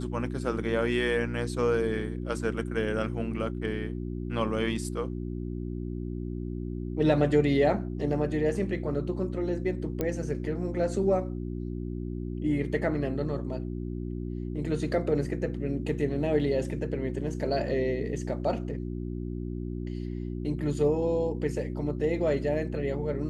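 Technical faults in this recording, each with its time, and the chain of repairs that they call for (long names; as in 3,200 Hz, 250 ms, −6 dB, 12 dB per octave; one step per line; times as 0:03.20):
mains hum 60 Hz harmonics 6 −34 dBFS
0:10.01: click −16 dBFS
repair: click removal
hum removal 60 Hz, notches 6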